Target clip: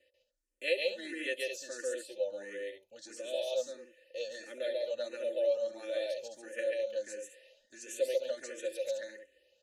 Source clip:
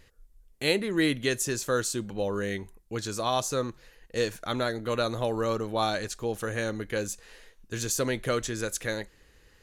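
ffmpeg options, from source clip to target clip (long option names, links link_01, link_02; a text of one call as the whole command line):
ffmpeg -i in.wav -filter_complex "[0:a]equalizer=frequency=10000:width_type=o:width=2.4:gain=15,aecho=1:1:3.4:0.89,acrossover=split=310|1200|2200[link_01][link_02][link_03][link_04];[link_01]acompressor=threshold=-45dB:ratio=10[link_05];[link_03]acrusher=bits=3:mix=0:aa=0.5[link_06];[link_05][link_02][link_06][link_04]amix=inputs=4:normalize=0,asplit=3[link_07][link_08][link_09];[link_07]bandpass=frequency=530:width_type=q:width=8,volume=0dB[link_10];[link_08]bandpass=frequency=1840:width_type=q:width=8,volume=-6dB[link_11];[link_09]bandpass=frequency=2480:width_type=q:width=8,volume=-9dB[link_12];[link_10][link_11][link_12]amix=inputs=3:normalize=0,aecho=1:1:139.9|209.9:0.891|0.398,asplit=2[link_13][link_14];[link_14]afreqshift=1.5[link_15];[link_13][link_15]amix=inputs=2:normalize=1" out.wav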